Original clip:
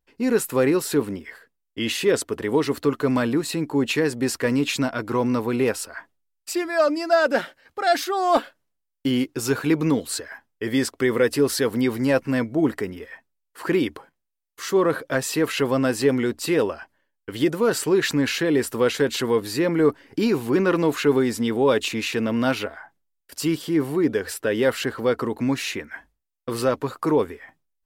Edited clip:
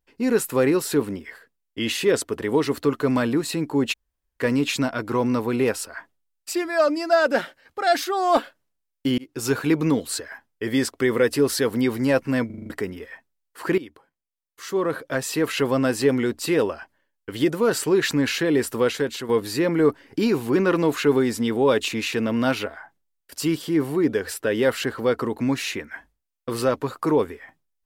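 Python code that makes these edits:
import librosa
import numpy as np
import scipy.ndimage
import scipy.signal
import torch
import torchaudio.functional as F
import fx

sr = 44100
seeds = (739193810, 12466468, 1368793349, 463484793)

y = fx.edit(x, sr, fx.room_tone_fill(start_s=3.93, length_s=0.47, crossfade_s=0.02),
    fx.fade_in_span(start_s=9.18, length_s=0.28),
    fx.stutter_over(start_s=12.46, slice_s=0.04, count=6),
    fx.fade_in_from(start_s=13.78, length_s=1.83, floor_db=-17.0),
    fx.fade_out_to(start_s=18.78, length_s=0.51, floor_db=-9.0), tone=tone)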